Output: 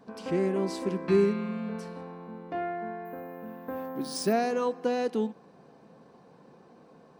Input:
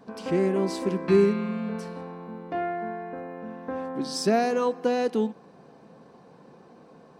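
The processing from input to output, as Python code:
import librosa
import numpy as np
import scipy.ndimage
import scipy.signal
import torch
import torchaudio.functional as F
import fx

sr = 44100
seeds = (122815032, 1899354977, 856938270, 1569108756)

y = fx.resample_bad(x, sr, factor=3, down='none', up='hold', at=(3.05, 4.33))
y = F.gain(torch.from_numpy(y), -3.5).numpy()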